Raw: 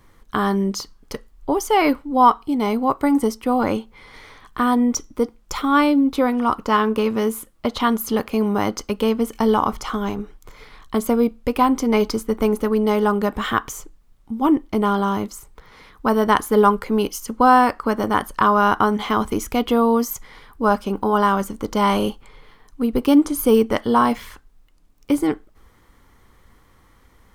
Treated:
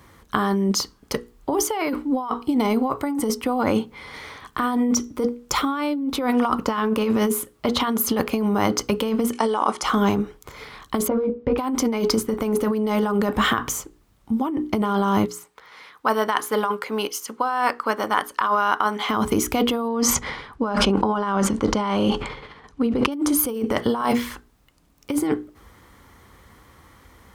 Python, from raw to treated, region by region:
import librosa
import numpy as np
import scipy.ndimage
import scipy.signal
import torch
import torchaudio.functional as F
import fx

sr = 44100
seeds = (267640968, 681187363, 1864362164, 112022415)

y = fx.chain(x, sr, fx.highpass(hz=350.0, slope=12),
    fx.resample_bad(factor=2, down='none', up='filtered'), at=(9.32, 9.83))
y = fx.chain(y, sr, fx.resample_bad(factor=3, down='none', up='filtered'),
    fx.spacing_loss(db_at_10k=43),
    fx.doubler(ms=19.0, db=-3.0), at=(11.08, 11.58))
y = fx.chain(y, sr, fx.highpass(hz=1200.0, slope=6),
    fx.high_shelf(hz=4800.0, db=-7.0), at=(15.25, 19.09))
y = fx.chain(y, sr, fx.air_absorb(metres=85.0),
    fx.sustainer(db_per_s=55.0), at=(19.88, 23.12))
y = scipy.signal.sosfilt(scipy.signal.butter(4, 48.0, 'highpass', fs=sr, output='sos'), y)
y = fx.hum_notches(y, sr, base_hz=60, count=8)
y = fx.over_compress(y, sr, threshold_db=-23.0, ratio=-1.0)
y = y * 10.0 ** (2.0 / 20.0)